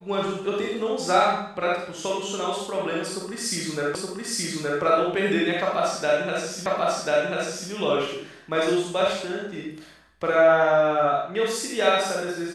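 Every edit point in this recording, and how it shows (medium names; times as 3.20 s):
3.95 s: repeat of the last 0.87 s
6.66 s: repeat of the last 1.04 s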